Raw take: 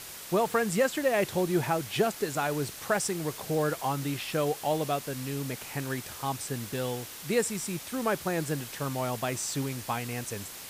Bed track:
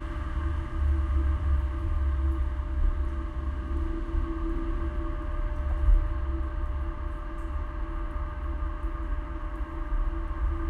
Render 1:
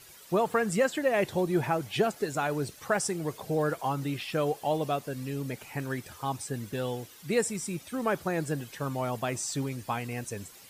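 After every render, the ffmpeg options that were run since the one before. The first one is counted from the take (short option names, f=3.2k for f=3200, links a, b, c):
-af "afftdn=nr=12:nf=-43"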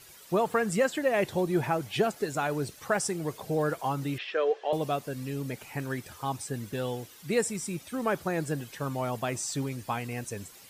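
-filter_complex "[0:a]asettb=1/sr,asplit=3[a][b][c];[a]atrim=end=4.184[d];[b]atrim=start=4.18:end=4.73,asetpts=PTS-STARTPTS,afade=t=in:d=0.004:c=qsin,afade=t=out:st=0.546:d=0.004:c=qsin,highpass=f=410:w=0.5412,highpass=f=410:w=1.3066,equalizer=f=420:t=q:w=4:g=8,equalizer=f=840:t=q:w=4:g=-5,equalizer=f=1.7k:t=q:w=4:g=7,equalizer=f=4.6k:t=q:w=4:g=-6,lowpass=f=4.8k:w=0.5412,lowpass=f=4.8k:w=1.3066[e];[c]atrim=start=4.726[f];[d][e]acrossfade=d=0.004:c1=hsin:c2=qsin[g];[g][f]acrossfade=d=0.004:c1=qsin:c2=hsin"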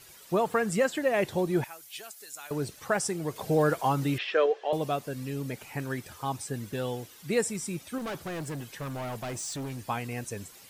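-filter_complex "[0:a]asettb=1/sr,asplit=3[a][b][c];[a]atrim=end=1.644[d];[b]atrim=start=1.64:end=2.51,asetpts=PTS-STARTPTS,afade=t=in:d=0.004:c=qsin,afade=t=out:st=0.866:d=0.004:c=qsin,aderivative[e];[c]atrim=start=2.506[f];[d][e]acrossfade=d=0.004:c1=hsin:c2=qsin[g];[g][f]acrossfade=d=0.004:c1=qsin:c2=hsin,asettb=1/sr,asplit=3[h][i][j];[h]atrim=end=7.984[k];[i]atrim=start=7.98:end=9.87,asetpts=PTS-STARTPTS,afade=t=in:d=0.004:c=qsin,afade=t=out:st=1.886:d=0.004:c=qsin,asoftclip=type=hard:threshold=-32.5dB[l];[j]atrim=start=9.866[m];[k][l]acrossfade=d=0.004:c1=hsin:c2=qsin[n];[n][m]acrossfade=d=0.004:c1=qsin:c2=hsin,asplit=3[o][p][q];[o]atrim=end=3.362[r];[p]atrim=start=3.358:end=4.462,asetpts=PTS-STARTPTS,volume=4dB[s];[q]atrim=start=4.458[t];[r][s]acrossfade=d=0.004:c1=hsin:c2=hsin[u];[u][t]acrossfade=d=0.004:c1=hsin:c2=hsin"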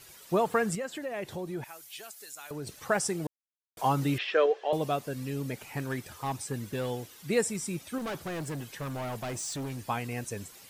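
-filter_complex "[0:a]asettb=1/sr,asplit=3[a][b][c];[a]atrim=end=0.754[d];[b]atrim=start=0.75:end=2.67,asetpts=PTS-STARTPTS,afade=t=in:d=0.004:c=qsin,afade=t=out:st=1.916:d=0.004:c=qsin,acompressor=threshold=-40dB:ratio=2:attack=3.2:release=140:knee=1:detection=peak[e];[c]atrim=start=2.666[f];[d][e]acrossfade=d=0.004:c1=hsin:c2=qsin[g];[g][f]acrossfade=d=0.004:c1=qsin:c2=hsin,asettb=1/sr,asplit=3[h][i][j];[h]atrim=end=5.694[k];[i]atrim=start=5.69:end=6.9,asetpts=PTS-STARTPTS,afade=t=in:d=0.004:c=qsin,afade=t=out:st=1.206:d=0.004:c=qsin,asoftclip=type=hard:threshold=-26dB[l];[j]atrim=start=6.896[m];[k][l]acrossfade=d=0.004:c1=hsin:c2=qsin[n];[n][m]acrossfade=d=0.004:c1=qsin:c2=hsin,asplit=3[o][p][q];[o]atrim=end=3.27,asetpts=PTS-STARTPTS,afade=t=out:st=3.266:d=0.004:c=hsin[r];[p]atrim=start=3.27:end=3.77,asetpts=PTS-STARTPTS,volume=0[s];[q]atrim=start=3.77,asetpts=PTS-STARTPTS,afade=t=in:d=0.004:c=hsin[t];[r][s][t]concat=n=3:v=0:a=1"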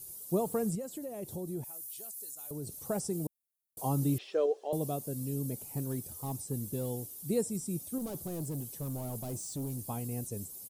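-filter_complex "[0:a]acrossover=split=5000[a][b];[b]acompressor=threshold=-47dB:ratio=4:attack=1:release=60[c];[a][c]amix=inputs=2:normalize=0,firequalizer=gain_entry='entry(190,0);entry(1700,-23);entry(4300,-8);entry(10000,10)':delay=0.05:min_phase=1"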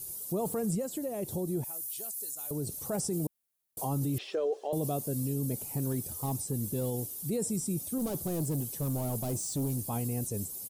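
-af "acontrast=37,alimiter=limit=-24dB:level=0:latency=1:release=12"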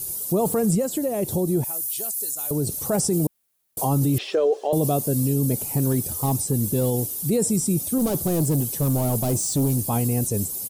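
-af "volume=10.5dB"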